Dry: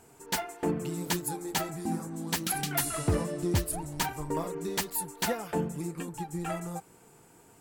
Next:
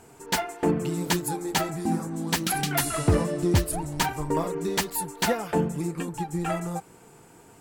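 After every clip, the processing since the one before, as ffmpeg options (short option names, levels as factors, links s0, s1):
-af "highshelf=f=8300:g=-6,volume=2"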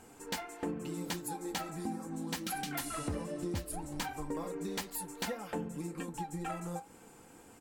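-af "aecho=1:1:3.8:0.44,acompressor=threshold=0.0224:ratio=3,flanger=delay=9.2:depth=1.8:regen=-71:speed=2:shape=sinusoidal"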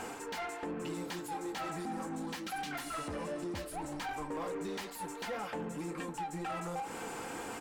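-filter_complex "[0:a]areverse,acompressor=threshold=0.00447:ratio=6,areverse,alimiter=level_in=8.41:limit=0.0631:level=0:latency=1:release=234,volume=0.119,asplit=2[s0][s1];[s1]highpass=f=720:p=1,volume=7.08,asoftclip=type=tanh:threshold=0.0075[s2];[s0][s2]amix=inputs=2:normalize=0,lowpass=f=2800:p=1,volume=0.501,volume=3.76"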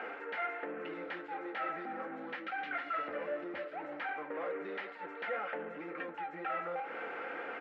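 -af "highpass=400,equalizer=f=550:t=q:w=4:g=6,equalizer=f=980:t=q:w=4:g=-8,equalizer=f=1400:t=q:w=4:g=7,equalizer=f=2000:t=q:w=4:g=6,lowpass=f=2700:w=0.5412,lowpass=f=2700:w=1.3066"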